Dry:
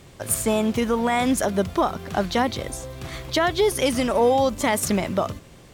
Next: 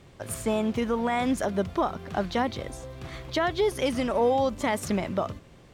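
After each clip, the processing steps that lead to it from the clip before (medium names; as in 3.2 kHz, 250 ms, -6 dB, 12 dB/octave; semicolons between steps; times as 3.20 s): treble shelf 6.1 kHz -11 dB; trim -4.5 dB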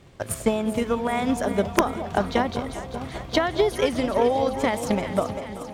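echo whose repeats swap between lows and highs 195 ms, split 890 Hz, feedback 82%, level -8 dB; transient shaper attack +8 dB, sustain +1 dB; integer overflow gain 5.5 dB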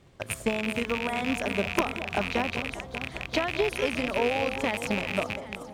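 rattle on loud lows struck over -33 dBFS, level -12 dBFS; trim -6 dB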